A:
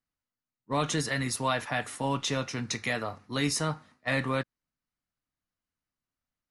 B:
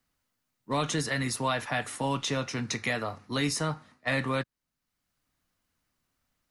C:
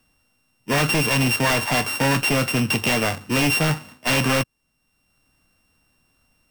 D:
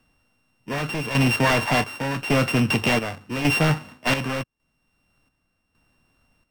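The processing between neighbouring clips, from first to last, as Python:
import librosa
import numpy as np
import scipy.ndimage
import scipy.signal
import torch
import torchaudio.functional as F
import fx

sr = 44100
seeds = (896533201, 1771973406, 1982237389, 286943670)

y1 = fx.band_squash(x, sr, depth_pct=40)
y2 = np.r_[np.sort(y1[:len(y1) // 16 * 16].reshape(-1, 16), axis=1).ravel(), y1[len(y1) // 16 * 16:]]
y2 = fx.fold_sine(y2, sr, drive_db=11, ceiling_db=-14.0)
y2 = y2 * librosa.db_to_amplitude(-1.0)
y3 = fx.high_shelf(y2, sr, hz=5200.0, db=-10.5)
y3 = fx.chopper(y3, sr, hz=0.87, depth_pct=60, duty_pct=60)
y3 = y3 * librosa.db_to_amplitude(1.5)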